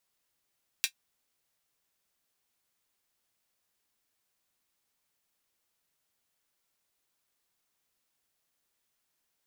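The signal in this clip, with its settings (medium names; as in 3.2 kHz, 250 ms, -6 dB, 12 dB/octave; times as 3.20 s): closed hi-hat, high-pass 2.5 kHz, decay 0.09 s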